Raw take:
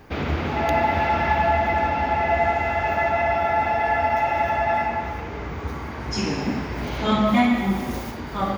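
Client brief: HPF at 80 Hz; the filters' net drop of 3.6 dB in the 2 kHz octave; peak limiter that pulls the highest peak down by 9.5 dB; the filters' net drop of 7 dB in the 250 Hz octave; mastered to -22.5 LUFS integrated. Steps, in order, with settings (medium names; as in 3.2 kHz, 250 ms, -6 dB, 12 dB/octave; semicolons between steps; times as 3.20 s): high-pass 80 Hz; peaking EQ 250 Hz -8.5 dB; peaking EQ 2 kHz -4 dB; trim +6.5 dB; peak limiter -14 dBFS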